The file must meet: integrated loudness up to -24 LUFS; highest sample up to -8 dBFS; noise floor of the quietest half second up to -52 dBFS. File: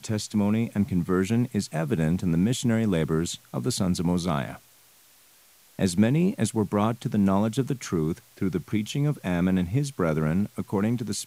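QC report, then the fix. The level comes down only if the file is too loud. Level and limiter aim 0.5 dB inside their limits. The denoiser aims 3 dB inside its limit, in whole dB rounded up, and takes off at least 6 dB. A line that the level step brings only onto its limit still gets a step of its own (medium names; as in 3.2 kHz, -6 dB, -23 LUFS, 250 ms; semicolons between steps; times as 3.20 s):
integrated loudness -26.0 LUFS: pass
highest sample -10.0 dBFS: pass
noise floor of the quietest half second -57 dBFS: pass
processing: none needed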